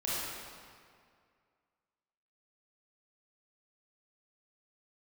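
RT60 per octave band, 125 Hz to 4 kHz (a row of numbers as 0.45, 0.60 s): 2.2, 2.1, 2.1, 2.1, 1.9, 1.5 s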